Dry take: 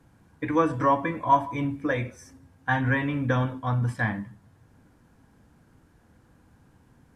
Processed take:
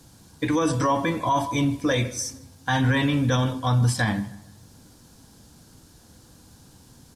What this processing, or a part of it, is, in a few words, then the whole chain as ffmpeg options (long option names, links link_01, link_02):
over-bright horn tweeter: -filter_complex "[0:a]highshelf=frequency=3000:width_type=q:width=1.5:gain=13,alimiter=limit=-20dB:level=0:latency=1:release=18,asplit=2[link_01][link_02];[link_02]adelay=155,lowpass=frequency=2600:poles=1,volume=-19dB,asplit=2[link_03][link_04];[link_04]adelay=155,lowpass=frequency=2600:poles=1,volume=0.43,asplit=2[link_05][link_06];[link_06]adelay=155,lowpass=frequency=2600:poles=1,volume=0.43[link_07];[link_01][link_03][link_05][link_07]amix=inputs=4:normalize=0,volume=6dB"